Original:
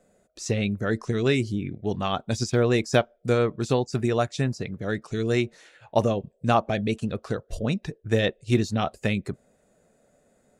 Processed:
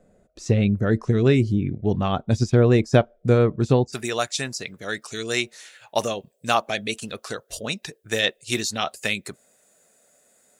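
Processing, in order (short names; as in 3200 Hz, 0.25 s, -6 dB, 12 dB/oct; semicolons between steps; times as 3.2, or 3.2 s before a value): tilt -2 dB/oct, from 3.92 s +4 dB/oct; gain +1.5 dB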